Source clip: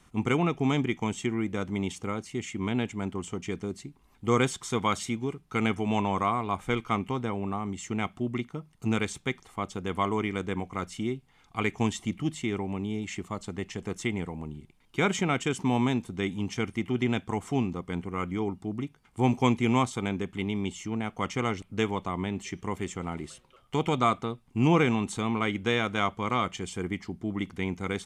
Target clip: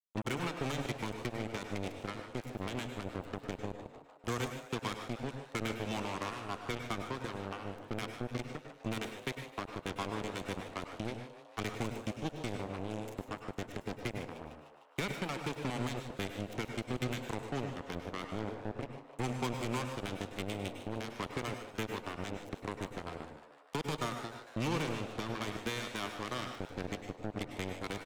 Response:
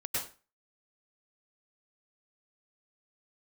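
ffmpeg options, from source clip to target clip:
-filter_complex "[0:a]acrossover=split=130|260|580|3600[link_01][link_02][link_03][link_04][link_05];[link_01]acompressor=threshold=-40dB:ratio=4[link_06];[link_02]acompressor=threshold=-42dB:ratio=4[link_07];[link_03]acompressor=threshold=-44dB:ratio=4[link_08];[link_04]acompressor=threshold=-40dB:ratio=4[link_09];[link_05]acompressor=threshold=-46dB:ratio=4[link_10];[link_06][link_07][link_08][link_09][link_10]amix=inputs=5:normalize=0,acrusher=bits=4:mix=0:aa=0.5,asplit=8[link_11][link_12][link_13][link_14][link_15][link_16][link_17][link_18];[link_12]adelay=151,afreqshift=140,volume=-13.5dB[link_19];[link_13]adelay=302,afreqshift=280,volume=-17.7dB[link_20];[link_14]adelay=453,afreqshift=420,volume=-21.8dB[link_21];[link_15]adelay=604,afreqshift=560,volume=-26dB[link_22];[link_16]adelay=755,afreqshift=700,volume=-30.1dB[link_23];[link_17]adelay=906,afreqshift=840,volume=-34.3dB[link_24];[link_18]adelay=1057,afreqshift=980,volume=-38.4dB[link_25];[link_11][link_19][link_20][link_21][link_22][link_23][link_24][link_25]amix=inputs=8:normalize=0,asplit=2[link_26][link_27];[1:a]atrim=start_sample=2205[link_28];[link_27][link_28]afir=irnorm=-1:irlink=0,volume=-9dB[link_29];[link_26][link_29]amix=inputs=2:normalize=0,volume=-4dB"

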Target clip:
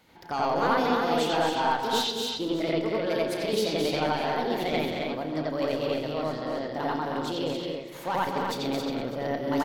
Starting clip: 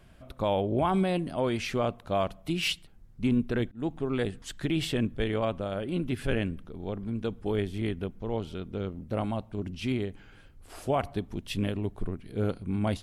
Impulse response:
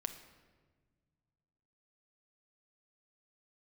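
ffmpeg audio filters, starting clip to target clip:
-filter_complex "[0:a]highpass=frequency=110:poles=1,lowshelf=frequency=190:gain=-9.5,asoftclip=type=tanh:threshold=-22dB,aecho=1:1:44|300|365|629|816:0.282|0.501|0.562|0.1|0.126,asplit=2[link_01][link_02];[1:a]atrim=start_sample=2205,lowpass=3000,adelay=118[link_03];[link_02][link_03]afir=irnorm=-1:irlink=0,volume=4.5dB[link_04];[link_01][link_04]amix=inputs=2:normalize=0,aresample=32000,aresample=44100,asetrate=59535,aresample=44100"

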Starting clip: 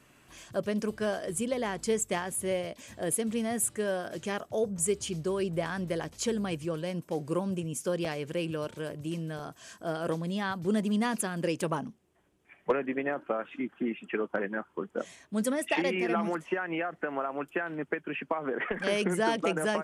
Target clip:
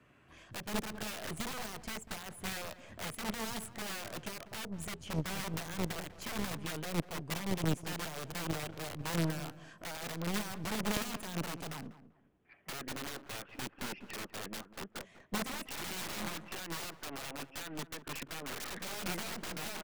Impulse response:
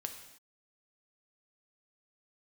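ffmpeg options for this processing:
-filter_complex "[0:a]highpass=frequency=41:width=0.5412,highpass=frequency=41:width=1.3066,bass=frequency=250:gain=-3,treble=frequency=4000:gain=-15,bandreject=frequency=900:width=17,alimiter=level_in=1.5dB:limit=-24dB:level=0:latency=1:release=317,volume=-1.5dB,acrossover=split=150[link_01][link_02];[link_01]acontrast=44[link_03];[link_02]aeval=exprs='(mod(53.1*val(0)+1,2)-1)/53.1':channel_layout=same[link_04];[link_03][link_04]amix=inputs=2:normalize=0,aeval=exprs='0.0355*(cos(1*acos(clip(val(0)/0.0355,-1,1)))-cos(1*PI/2))+0.00398*(cos(2*acos(clip(val(0)/0.0355,-1,1)))-cos(2*PI/2))+0.0141*(cos(3*acos(clip(val(0)/0.0355,-1,1)))-cos(3*PI/2))+0.00316*(cos(5*acos(clip(val(0)/0.0355,-1,1)))-cos(5*PI/2))+0.000282*(cos(6*acos(clip(val(0)/0.0355,-1,1)))-cos(6*PI/2))':channel_layout=same,asplit=2[link_05][link_06];[link_06]adelay=195,lowpass=frequency=1300:poles=1,volume=-13dB,asplit=2[link_07][link_08];[link_08]adelay=195,lowpass=frequency=1300:poles=1,volume=0.27,asplit=2[link_09][link_10];[link_10]adelay=195,lowpass=frequency=1300:poles=1,volume=0.27[link_11];[link_05][link_07][link_09][link_11]amix=inputs=4:normalize=0,volume=8.5dB"

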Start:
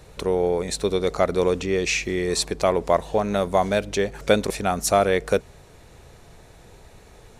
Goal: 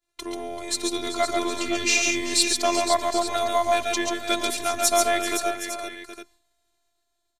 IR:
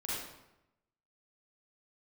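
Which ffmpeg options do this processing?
-filter_complex "[0:a]highpass=120,equalizer=frequency=430:width=0.39:gain=-10,agate=range=-33dB:threshold=-40dB:ratio=3:detection=peak,acontrast=83,aeval=exprs='0.668*(cos(1*acos(clip(val(0)/0.668,-1,1)))-cos(1*PI/2))+0.0075*(cos(8*acos(clip(val(0)/0.668,-1,1)))-cos(8*PI/2))':channel_layout=same,dynaudnorm=framelen=130:gausssize=13:maxgain=7.5dB,afftfilt=real='hypot(re,im)*cos(PI*b)':imag='0':win_size=512:overlap=0.75,asplit=2[link_01][link_02];[link_02]aecho=0:1:118|138|387|514|768|856:0.251|0.631|0.224|0.376|0.2|0.2[link_03];[link_01][link_03]amix=inputs=2:normalize=0,volume=-3dB"

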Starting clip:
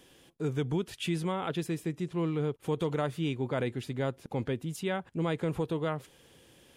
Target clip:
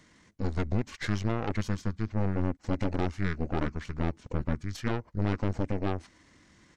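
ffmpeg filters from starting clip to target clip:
ffmpeg -i in.wav -af "asetrate=26990,aresample=44100,atempo=1.63392,aeval=exprs='0.0944*(cos(1*acos(clip(val(0)/0.0944,-1,1)))-cos(1*PI/2))+0.0335*(cos(4*acos(clip(val(0)/0.0944,-1,1)))-cos(4*PI/2))':channel_layout=same" out.wav

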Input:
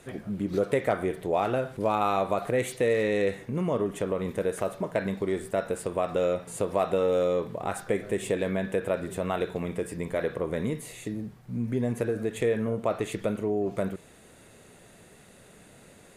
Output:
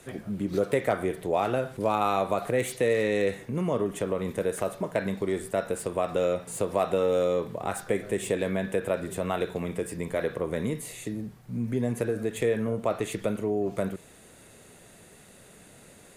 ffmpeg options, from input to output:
ffmpeg -i in.wav -filter_complex "[0:a]highshelf=frequency=5500:gain=5,acrossover=split=210|3300[link_01][link_02][link_03];[link_03]volume=32dB,asoftclip=hard,volume=-32dB[link_04];[link_01][link_02][link_04]amix=inputs=3:normalize=0" out.wav

